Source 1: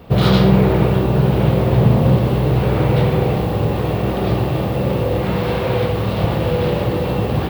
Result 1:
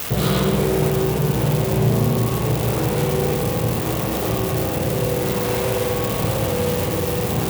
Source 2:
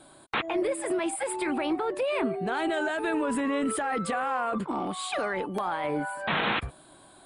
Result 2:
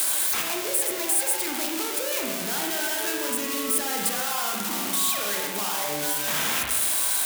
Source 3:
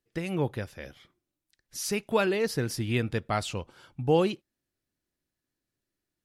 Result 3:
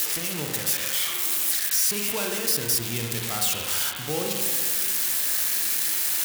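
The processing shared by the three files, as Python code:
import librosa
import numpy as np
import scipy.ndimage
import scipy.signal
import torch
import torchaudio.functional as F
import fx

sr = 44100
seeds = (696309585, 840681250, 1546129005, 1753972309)

y = x + 0.5 * 10.0 ** (-9.0 / 20.0) * np.diff(np.sign(x), prepend=np.sign(x[:1]))
y = fx.rev_spring(y, sr, rt60_s=1.4, pass_ms=(34, 53), chirp_ms=55, drr_db=0.0)
y = fx.band_squash(y, sr, depth_pct=40)
y = y * librosa.db_to_amplitude(-7.5)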